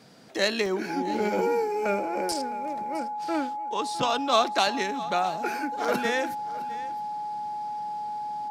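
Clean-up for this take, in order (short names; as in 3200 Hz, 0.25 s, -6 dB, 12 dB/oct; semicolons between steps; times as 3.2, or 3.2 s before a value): notch 840 Hz, Q 30; interpolate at 0.66/2.32, 1.6 ms; inverse comb 0.661 s -17.5 dB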